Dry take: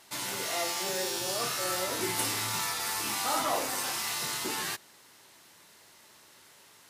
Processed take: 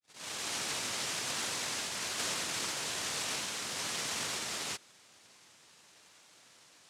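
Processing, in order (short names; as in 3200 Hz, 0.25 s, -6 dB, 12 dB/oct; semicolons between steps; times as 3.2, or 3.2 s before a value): tape start at the beginning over 1.12 s; inverse Chebyshev band-stop 160–650 Hz, stop band 70 dB; noise vocoder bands 1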